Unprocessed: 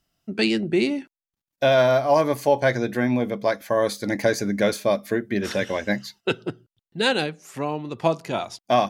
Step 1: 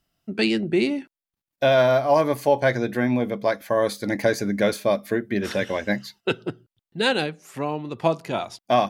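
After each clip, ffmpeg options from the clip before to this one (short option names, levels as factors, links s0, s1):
-af "equalizer=f=6300:t=o:w=0.82:g=-3.5"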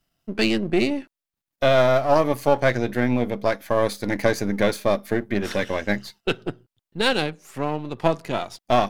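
-af "aeval=exprs='if(lt(val(0),0),0.447*val(0),val(0))':c=same,volume=1.33"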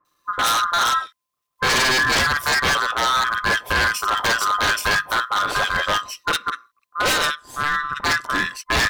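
-filter_complex "[0:a]afftfilt=real='real(if(lt(b,960),b+48*(1-2*mod(floor(b/48),2)),b),0)':imag='imag(if(lt(b,960),b+48*(1-2*mod(floor(b/48),2)),b),0)':win_size=2048:overlap=0.75,acrossover=split=1600[s0][s1];[s1]adelay=50[s2];[s0][s2]amix=inputs=2:normalize=0,aeval=exprs='0.1*(abs(mod(val(0)/0.1+3,4)-2)-1)':c=same,volume=2.24"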